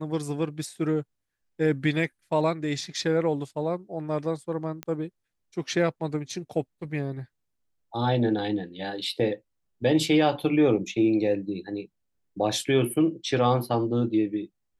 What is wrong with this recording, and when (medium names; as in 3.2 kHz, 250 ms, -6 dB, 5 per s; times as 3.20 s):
4.83 s: pop -18 dBFS